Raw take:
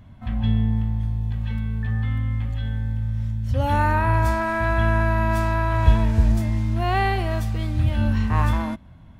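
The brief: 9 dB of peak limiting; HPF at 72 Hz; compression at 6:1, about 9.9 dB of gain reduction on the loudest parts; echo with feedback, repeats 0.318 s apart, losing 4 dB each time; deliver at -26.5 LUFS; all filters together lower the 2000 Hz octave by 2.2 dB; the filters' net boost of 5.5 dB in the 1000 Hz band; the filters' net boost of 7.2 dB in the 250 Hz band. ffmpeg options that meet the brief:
-af "highpass=72,equalizer=f=250:t=o:g=8.5,equalizer=f=1k:t=o:g=7,equalizer=f=2k:t=o:g=-6,acompressor=threshold=-23dB:ratio=6,alimiter=limit=-23dB:level=0:latency=1,aecho=1:1:318|636|954|1272|1590|1908|2226|2544|2862:0.631|0.398|0.25|0.158|0.0994|0.0626|0.0394|0.0249|0.0157,volume=1.5dB"

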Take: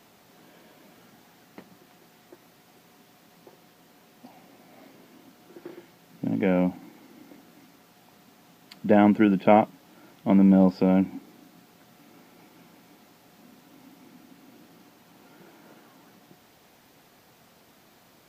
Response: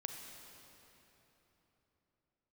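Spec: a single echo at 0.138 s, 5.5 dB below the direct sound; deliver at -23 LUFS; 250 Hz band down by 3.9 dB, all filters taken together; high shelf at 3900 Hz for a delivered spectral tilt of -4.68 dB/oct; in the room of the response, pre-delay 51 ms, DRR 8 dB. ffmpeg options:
-filter_complex "[0:a]equalizer=f=250:t=o:g=-5.5,highshelf=f=3.9k:g=6,aecho=1:1:138:0.531,asplit=2[a][b];[1:a]atrim=start_sample=2205,adelay=51[c];[b][c]afir=irnorm=-1:irlink=0,volume=-6.5dB[d];[a][d]amix=inputs=2:normalize=0,volume=0.5dB"

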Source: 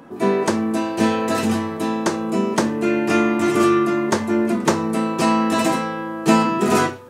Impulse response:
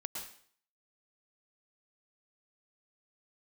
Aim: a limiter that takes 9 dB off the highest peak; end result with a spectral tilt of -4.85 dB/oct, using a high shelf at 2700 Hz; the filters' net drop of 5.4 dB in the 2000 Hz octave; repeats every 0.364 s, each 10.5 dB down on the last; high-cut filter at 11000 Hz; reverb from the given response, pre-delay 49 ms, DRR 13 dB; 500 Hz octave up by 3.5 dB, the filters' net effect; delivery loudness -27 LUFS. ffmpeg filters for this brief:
-filter_complex "[0:a]lowpass=11k,equalizer=f=500:t=o:g=5.5,equalizer=f=2k:t=o:g=-5,highshelf=f=2.7k:g=-6,alimiter=limit=-10dB:level=0:latency=1,aecho=1:1:364|728|1092:0.299|0.0896|0.0269,asplit=2[a][b];[1:a]atrim=start_sample=2205,adelay=49[c];[b][c]afir=irnorm=-1:irlink=0,volume=-12.5dB[d];[a][d]amix=inputs=2:normalize=0,volume=-8dB"

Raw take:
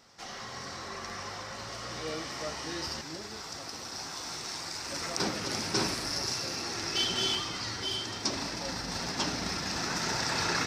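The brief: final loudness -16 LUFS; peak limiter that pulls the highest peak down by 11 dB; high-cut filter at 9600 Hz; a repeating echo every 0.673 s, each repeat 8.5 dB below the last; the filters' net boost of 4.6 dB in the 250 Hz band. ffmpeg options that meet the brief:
-af "lowpass=9.6k,equalizer=f=250:t=o:g=6,alimiter=level_in=0.5dB:limit=-24dB:level=0:latency=1,volume=-0.5dB,aecho=1:1:673|1346|2019|2692:0.376|0.143|0.0543|0.0206,volume=18dB"

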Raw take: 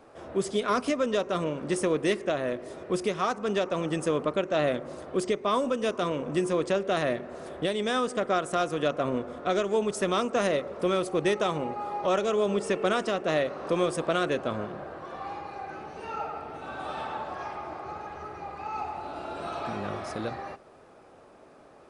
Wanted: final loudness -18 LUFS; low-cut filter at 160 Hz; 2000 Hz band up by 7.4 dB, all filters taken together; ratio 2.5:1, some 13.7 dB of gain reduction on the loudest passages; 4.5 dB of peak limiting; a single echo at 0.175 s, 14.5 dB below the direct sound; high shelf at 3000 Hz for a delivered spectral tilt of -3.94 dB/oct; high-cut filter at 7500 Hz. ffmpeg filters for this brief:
-af "highpass=160,lowpass=7.5k,equalizer=f=2k:t=o:g=8,highshelf=f=3k:g=4.5,acompressor=threshold=-41dB:ratio=2.5,alimiter=level_in=3dB:limit=-24dB:level=0:latency=1,volume=-3dB,aecho=1:1:175:0.188,volume=22dB"

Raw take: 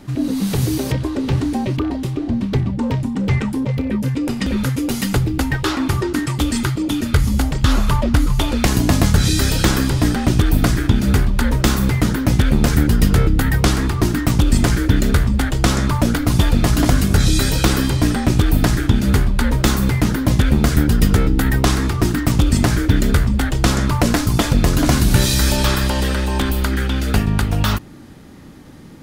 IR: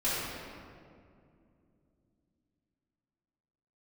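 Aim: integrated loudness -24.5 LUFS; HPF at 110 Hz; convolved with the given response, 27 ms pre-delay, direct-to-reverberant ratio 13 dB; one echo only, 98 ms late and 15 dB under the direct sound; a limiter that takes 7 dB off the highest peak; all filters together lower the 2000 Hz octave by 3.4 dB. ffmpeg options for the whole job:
-filter_complex "[0:a]highpass=110,equalizer=f=2k:t=o:g=-4.5,alimiter=limit=-9dB:level=0:latency=1,aecho=1:1:98:0.178,asplit=2[a][b];[1:a]atrim=start_sample=2205,adelay=27[c];[b][c]afir=irnorm=-1:irlink=0,volume=-23dB[d];[a][d]amix=inputs=2:normalize=0,volume=-4.5dB"

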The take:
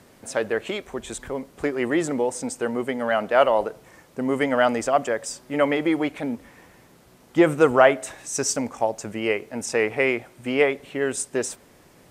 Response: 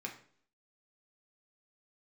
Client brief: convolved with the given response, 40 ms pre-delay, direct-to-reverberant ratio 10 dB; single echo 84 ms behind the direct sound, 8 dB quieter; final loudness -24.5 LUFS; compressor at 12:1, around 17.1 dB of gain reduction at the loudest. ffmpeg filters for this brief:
-filter_complex "[0:a]acompressor=threshold=-28dB:ratio=12,aecho=1:1:84:0.398,asplit=2[a][b];[1:a]atrim=start_sample=2205,adelay=40[c];[b][c]afir=irnorm=-1:irlink=0,volume=-10dB[d];[a][d]amix=inputs=2:normalize=0,volume=8dB"

